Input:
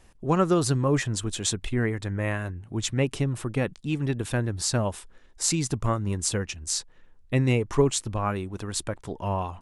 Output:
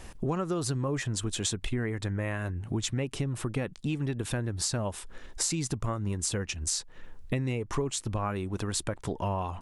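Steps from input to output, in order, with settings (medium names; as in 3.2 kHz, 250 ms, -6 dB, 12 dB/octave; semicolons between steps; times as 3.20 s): in parallel at -2 dB: peak limiter -17 dBFS, peak gain reduction 10 dB; on the sum: compression 5:1, threshold -35 dBFS, peak gain reduction 20 dB; trim +5.5 dB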